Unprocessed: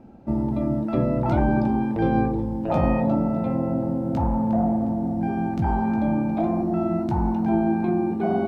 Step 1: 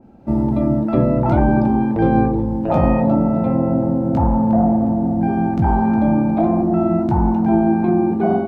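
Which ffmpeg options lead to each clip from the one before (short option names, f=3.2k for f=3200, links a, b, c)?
-af "dynaudnorm=f=170:g=3:m=7dB,adynamicequalizer=threshold=0.0126:dfrequency=2100:dqfactor=0.7:tfrequency=2100:tqfactor=0.7:attack=5:release=100:ratio=0.375:range=3.5:mode=cutabove:tftype=highshelf"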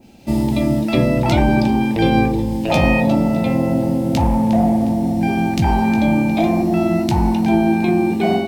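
-af "aexciter=amount=9.7:drive=6.6:freq=2.1k"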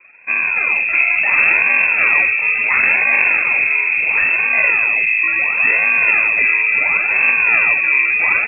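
-filter_complex "[0:a]asplit=7[a][b][c][d][e][f][g];[b]adelay=429,afreqshift=-110,volume=-5.5dB[h];[c]adelay=858,afreqshift=-220,volume=-12.2dB[i];[d]adelay=1287,afreqshift=-330,volume=-19dB[j];[e]adelay=1716,afreqshift=-440,volume=-25.7dB[k];[f]adelay=2145,afreqshift=-550,volume=-32.5dB[l];[g]adelay=2574,afreqshift=-660,volume=-39.2dB[m];[a][h][i][j][k][l][m]amix=inputs=7:normalize=0,acrusher=samples=22:mix=1:aa=0.000001:lfo=1:lforange=22:lforate=0.72,lowpass=f=2.3k:t=q:w=0.5098,lowpass=f=2.3k:t=q:w=0.6013,lowpass=f=2.3k:t=q:w=0.9,lowpass=f=2.3k:t=q:w=2.563,afreqshift=-2700"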